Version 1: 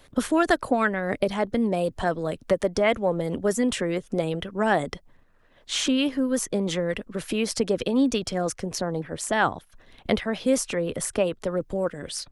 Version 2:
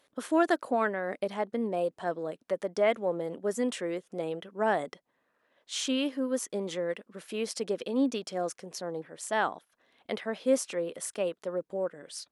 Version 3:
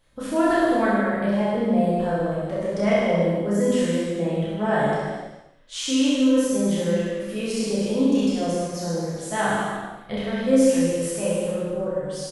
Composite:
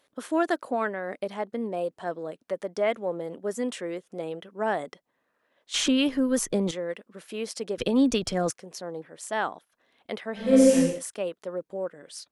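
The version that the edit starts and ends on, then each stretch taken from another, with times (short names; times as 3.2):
2
5.74–6.71 from 1
7.78–8.51 from 1
10.45–10.91 from 3, crossfade 0.24 s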